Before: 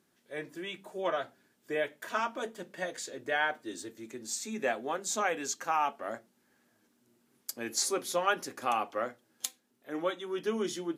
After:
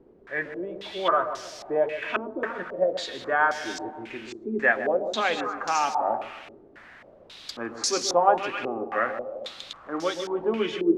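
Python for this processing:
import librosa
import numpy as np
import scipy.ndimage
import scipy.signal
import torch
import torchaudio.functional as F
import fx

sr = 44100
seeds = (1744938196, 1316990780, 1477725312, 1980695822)

p1 = fx.echo_feedback(x, sr, ms=156, feedback_pct=45, wet_db=-14)
p2 = fx.dmg_noise_colour(p1, sr, seeds[0], colour='white', level_db=-50.0)
p3 = p2 + fx.echo_alternate(p2, sr, ms=131, hz=840.0, feedback_pct=55, wet_db=-8.0, dry=0)
p4 = fx.filter_held_lowpass(p3, sr, hz=3.7, low_hz=390.0, high_hz=5500.0)
y = F.gain(torch.from_numpy(p4), 4.0).numpy()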